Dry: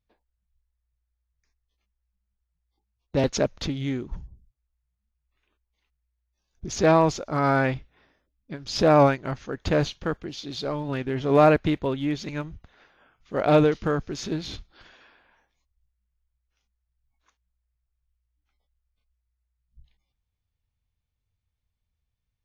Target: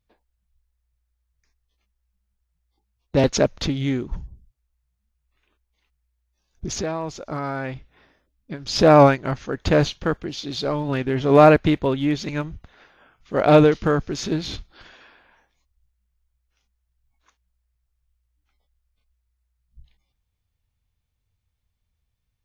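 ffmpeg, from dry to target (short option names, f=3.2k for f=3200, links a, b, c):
-filter_complex "[0:a]asettb=1/sr,asplit=3[a][b][c];[a]atrim=end=6.714[d];[b]atrim=start=6.71:end=8.67,asetpts=PTS-STARTPTS,afade=t=in:d=0.004:c=qsin,afade=t=out:st=1.956:d=0.004:c=qsin,acompressor=threshold=-32dB:ratio=4[e];[c]atrim=start=8.666[f];[d][e]acrossfade=d=0.004:c1=hsin:c2=qsin[g];[g][f]acrossfade=d=0.004:c1=qsin:c2=hsin,volume=5dB"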